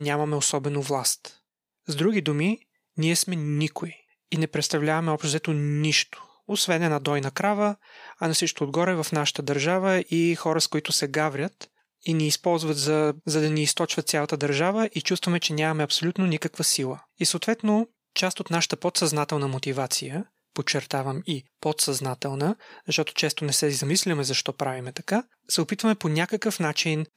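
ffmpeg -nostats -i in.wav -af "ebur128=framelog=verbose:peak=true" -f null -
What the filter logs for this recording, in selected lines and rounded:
Integrated loudness:
  I:         -24.9 LUFS
  Threshold: -35.1 LUFS
Loudness range:
  LRA:         2.6 LU
  Threshold: -45.1 LUFS
  LRA low:   -26.6 LUFS
  LRA high:  -24.0 LUFS
True peak:
  Peak:       -7.5 dBFS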